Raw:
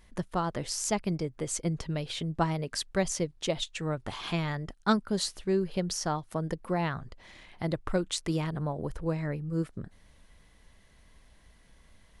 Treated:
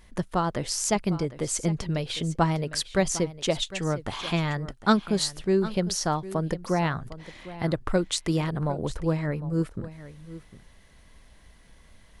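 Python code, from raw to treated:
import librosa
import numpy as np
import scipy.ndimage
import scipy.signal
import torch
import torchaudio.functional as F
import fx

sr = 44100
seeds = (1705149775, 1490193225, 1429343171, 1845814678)

y = x + 10.0 ** (-15.5 / 20.0) * np.pad(x, (int(755 * sr / 1000.0), 0))[:len(x)]
y = y * librosa.db_to_amplitude(4.5)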